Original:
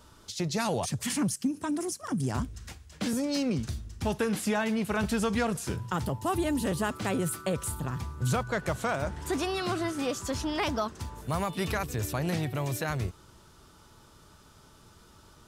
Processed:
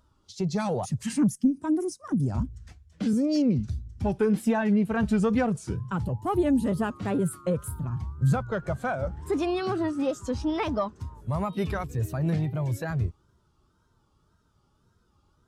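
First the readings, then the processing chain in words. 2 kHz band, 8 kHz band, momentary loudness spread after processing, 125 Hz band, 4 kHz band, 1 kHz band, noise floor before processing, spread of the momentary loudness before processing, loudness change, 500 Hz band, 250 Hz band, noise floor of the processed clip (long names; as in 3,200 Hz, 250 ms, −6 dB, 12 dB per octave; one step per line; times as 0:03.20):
−2.5 dB, −6.5 dB, 8 LU, +4.5 dB, −6.5 dB, 0.0 dB, −56 dBFS, 6 LU, +3.5 dB, +3.0 dB, +5.0 dB, −68 dBFS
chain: one-sided soft clipper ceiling −21 dBFS
tape wow and flutter 120 cents
every bin expanded away from the loudest bin 1.5 to 1
level +5 dB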